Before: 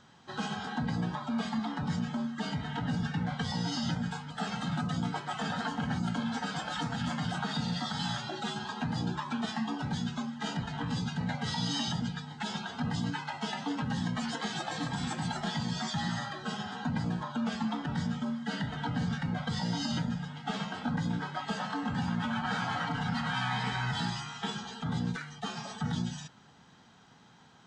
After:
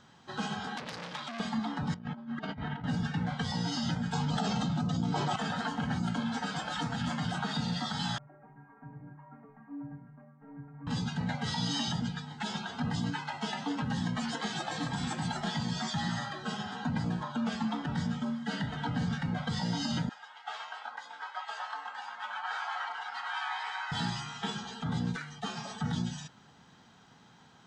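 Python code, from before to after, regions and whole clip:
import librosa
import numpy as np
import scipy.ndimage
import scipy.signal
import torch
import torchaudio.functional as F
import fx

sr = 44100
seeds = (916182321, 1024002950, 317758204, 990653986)

y = fx.chain(x, sr, fx.weighting(curve='D'),
    fx.transformer_sat(knee_hz=3800.0), at=(0.77, 1.4))
y = fx.chain(y, sr, fx.lowpass(hz=2500.0, slope=12),
    fx.over_compress(threshold_db=-38.0, ratio=-0.5), at=(1.94, 2.84))
y = fx.chain(y, sr, fx.lowpass(hz=7300.0, slope=24),
    fx.peak_eq(hz=1800.0, db=-10.0, octaves=1.6),
    fx.env_flatten(amount_pct=100), at=(4.13, 5.36))
y = fx.chain(y, sr, fx.median_filter(points=25),
    fx.steep_lowpass(hz=2000.0, slope=48),
    fx.stiff_resonator(f0_hz=140.0, decay_s=0.41, stiffness=0.008), at=(8.18, 10.87))
y = fx.chain(y, sr, fx.highpass(hz=820.0, slope=24),
    fx.tilt_eq(slope=-2.5), at=(20.09, 23.92))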